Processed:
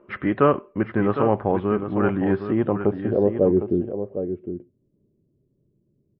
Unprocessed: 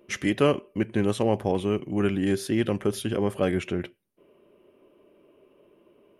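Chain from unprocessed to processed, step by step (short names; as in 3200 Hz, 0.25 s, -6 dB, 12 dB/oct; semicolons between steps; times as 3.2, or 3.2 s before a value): low-pass sweep 1300 Hz -> 130 Hz, 2.4–4.7; echo 0.758 s -9 dB; gain +2.5 dB; MP3 32 kbps 12000 Hz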